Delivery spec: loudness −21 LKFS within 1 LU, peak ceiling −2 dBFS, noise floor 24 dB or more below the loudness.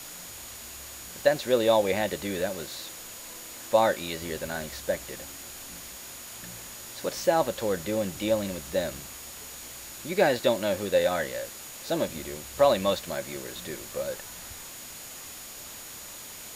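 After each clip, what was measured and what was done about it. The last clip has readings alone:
interfering tone 6,800 Hz; level of the tone −47 dBFS; background noise floor −43 dBFS; target noise floor −54 dBFS; integrated loudness −29.5 LKFS; sample peak −8.0 dBFS; target loudness −21.0 LKFS
→ notch filter 6,800 Hz, Q 30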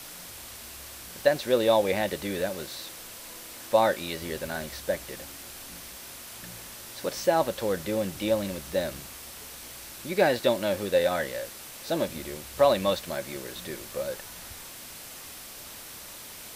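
interfering tone none found; background noise floor −44 dBFS; target noise floor −52 dBFS
→ broadband denoise 8 dB, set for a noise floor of −44 dBFS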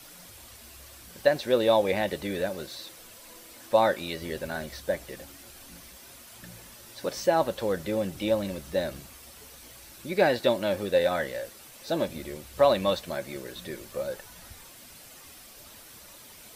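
background noise floor −49 dBFS; target noise floor −52 dBFS
→ broadband denoise 6 dB, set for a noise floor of −49 dBFS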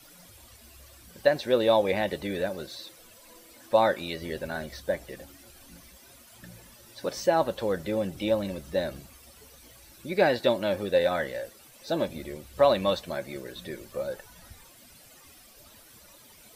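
background noise floor −54 dBFS; integrated loudness −28.0 LKFS; sample peak −8.0 dBFS; target loudness −21.0 LKFS
→ level +7 dB
brickwall limiter −2 dBFS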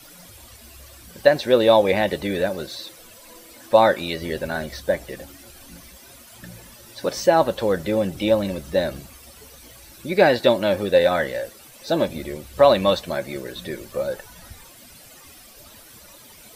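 integrated loudness −21.0 LKFS; sample peak −2.0 dBFS; background noise floor −47 dBFS

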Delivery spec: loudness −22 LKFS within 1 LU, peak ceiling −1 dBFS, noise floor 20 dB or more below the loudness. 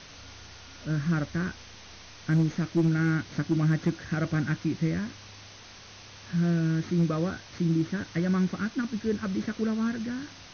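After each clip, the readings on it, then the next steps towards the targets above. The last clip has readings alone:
share of clipped samples 0.3%; peaks flattened at −17.5 dBFS; background noise floor −48 dBFS; target noise floor −49 dBFS; integrated loudness −28.5 LKFS; sample peak −17.5 dBFS; target loudness −22.0 LKFS
→ clipped peaks rebuilt −17.5 dBFS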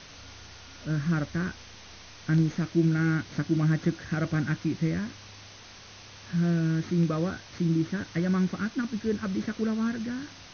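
share of clipped samples 0.0%; background noise floor −48 dBFS; target noise floor −49 dBFS
→ noise reduction from a noise print 6 dB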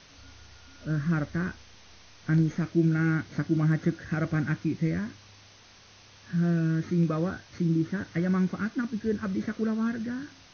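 background noise floor −54 dBFS; integrated loudness −28.5 LKFS; sample peak −13.5 dBFS; target loudness −22.0 LKFS
→ level +6.5 dB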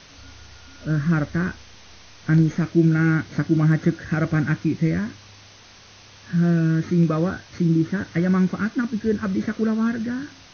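integrated loudness −22.0 LKFS; sample peak −7.0 dBFS; background noise floor −48 dBFS

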